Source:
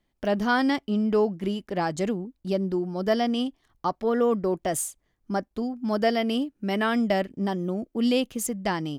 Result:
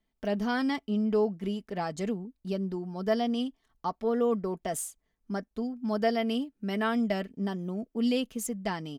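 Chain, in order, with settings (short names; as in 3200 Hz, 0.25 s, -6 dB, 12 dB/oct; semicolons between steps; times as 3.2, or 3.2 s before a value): comb 4.5 ms, depth 45%; gain -6.5 dB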